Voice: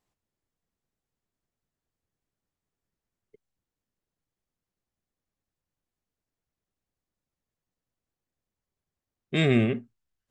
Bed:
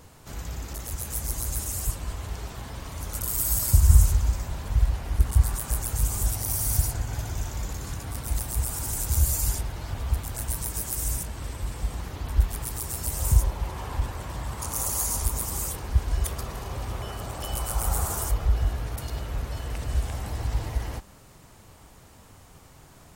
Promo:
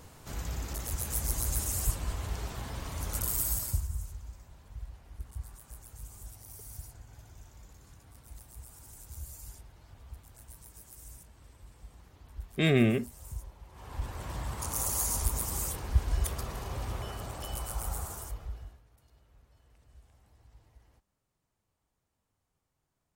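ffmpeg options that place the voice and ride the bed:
ffmpeg -i stem1.wav -i stem2.wav -filter_complex "[0:a]adelay=3250,volume=-2dB[link_01];[1:a]volume=16dB,afade=type=out:start_time=3.19:duration=0.7:silence=0.105925,afade=type=in:start_time=13.7:duration=0.61:silence=0.133352,afade=type=out:start_time=16.9:duration=1.92:silence=0.0421697[link_02];[link_01][link_02]amix=inputs=2:normalize=0" out.wav

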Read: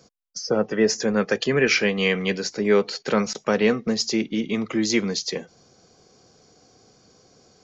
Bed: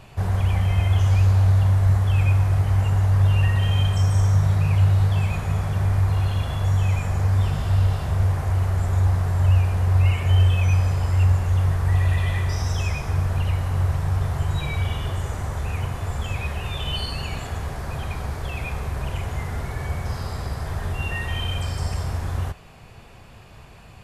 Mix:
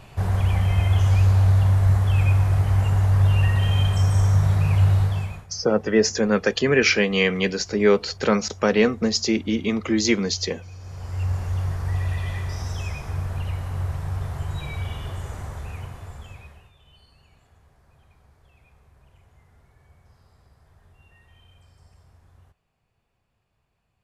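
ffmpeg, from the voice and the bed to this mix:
ffmpeg -i stem1.wav -i stem2.wav -filter_complex "[0:a]adelay=5150,volume=1.5dB[link_01];[1:a]volume=17dB,afade=type=out:start_time=4.94:duration=0.53:silence=0.0749894,afade=type=in:start_time=10.79:duration=0.62:silence=0.141254,afade=type=out:start_time=15.39:duration=1.33:silence=0.0707946[link_02];[link_01][link_02]amix=inputs=2:normalize=0" out.wav

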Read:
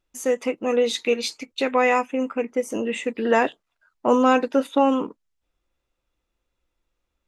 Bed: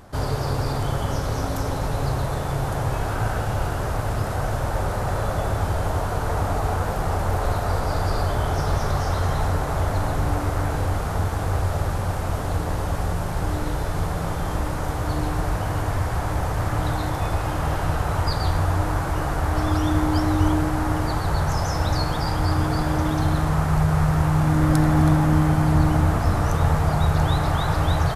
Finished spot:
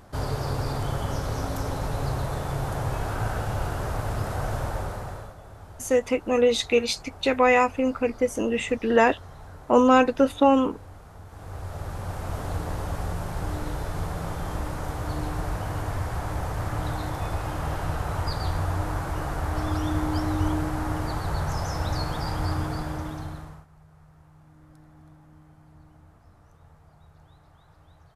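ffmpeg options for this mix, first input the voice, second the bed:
ffmpeg -i stem1.wav -i stem2.wav -filter_complex "[0:a]adelay=5650,volume=0.5dB[link_01];[1:a]volume=12dB,afade=type=out:start_time=4.6:duration=0.75:silence=0.133352,afade=type=in:start_time=11.26:duration=1.17:silence=0.158489,afade=type=out:start_time=22.46:duration=1.2:silence=0.0354813[link_02];[link_01][link_02]amix=inputs=2:normalize=0" out.wav

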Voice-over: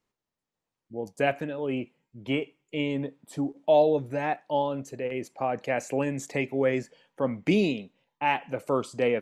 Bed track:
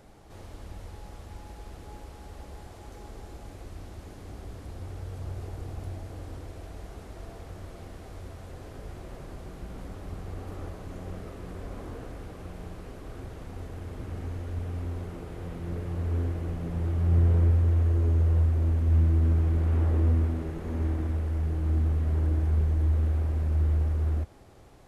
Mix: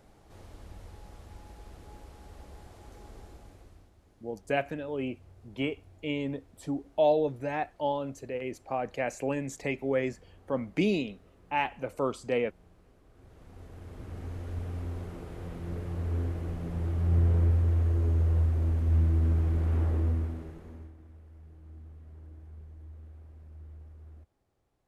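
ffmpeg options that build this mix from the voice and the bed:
ffmpeg -i stem1.wav -i stem2.wav -filter_complex "[0:a]adelay=3300,volume=-3.5dB[link_01];[1:a]volume=11dB,afade=type=out:start_time=3.19:duration=0.73:silence=0.211349,afade=type=in:start_time=13.13:duration=1.38:silence=0.158489,afade=type=out:start_time=19.8:duration=1.12:silence=0.0944061[link_02];[link_01][link_02]amix=inputs=2:normalize=0" out.wav

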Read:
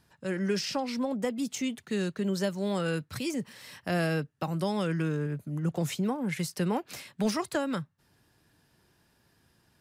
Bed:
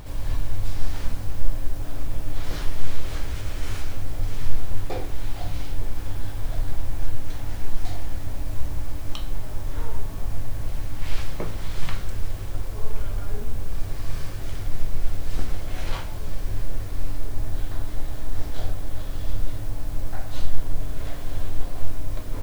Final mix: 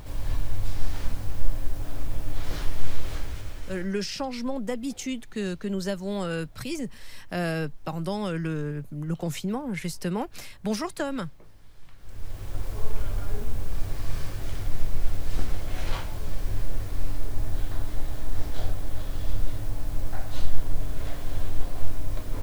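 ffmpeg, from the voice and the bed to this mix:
ffmpeg -i stem1.wav -i stem2.wav -filter_complex "[0:a]adelay=3450,volume=0dB[link_01];[1:a]volume=20.5dB,afade=type=out:start_time=3.05:duration=0.9:silence=0.0841395,afade=type=in:start_time=11.97:duration=0.72:silence=0.0749894[link_02];[link_01][link_02]amix=inputs=2:normalize=0" out.wav

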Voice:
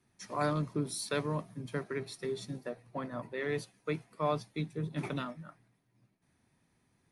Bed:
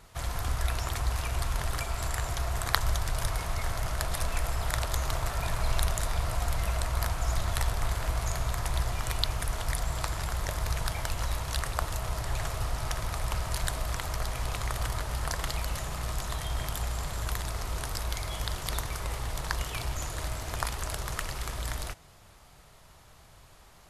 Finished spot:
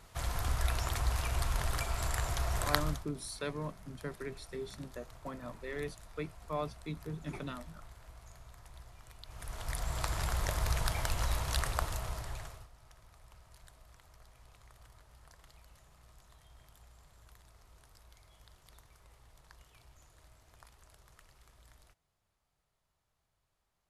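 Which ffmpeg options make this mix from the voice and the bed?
ffmpeg -i stem1.wav -i stem2.wav -filter_complex "[0:a]adelay=2300,volume=-5dB[link_01];[1:a]volume=19.5dB,afade=type=out:start_time=2.68:duration=0.38:silence=0.0891251,afade=type=in:start_time=9.25:duration=0.97:silence=0.0794328,afade=type=out:start_time=11.63:duration=1.05:silence=0.0530884[link_02];[link_01][link_02]amix=inputs=2:normalize=0" out.wav

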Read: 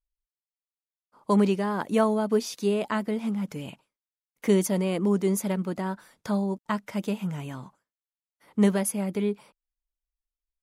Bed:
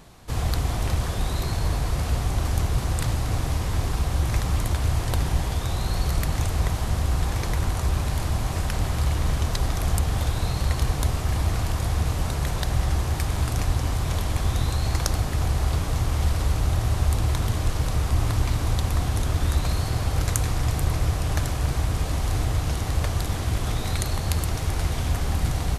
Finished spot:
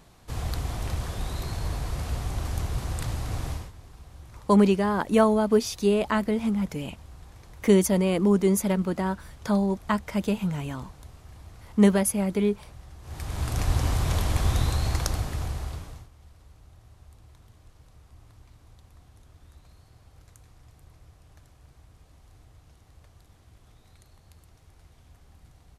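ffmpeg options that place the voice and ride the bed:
ffmpeg -i stem1.wav -i stem2.wav -filter_complex "[0:a]adelay=3200,volume=3dB[link_01];[1:a]volume=17dB,afade=type=out:start_time=3.49:duration=0.23:silence=0.141254,afade=type=in:start_time=13.01:duration=0.78:silence=0.0707946,afade=type=out:start_time=14.55:duration=1.54:silence=0.0316228[link_02];[link_01][link_02]amix=inputs=2:normalize=0" out.wav

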